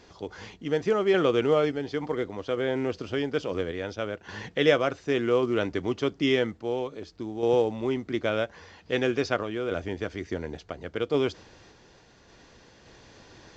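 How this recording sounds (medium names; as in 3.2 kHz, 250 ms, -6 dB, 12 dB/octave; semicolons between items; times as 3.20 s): random-step tremolo; µ-law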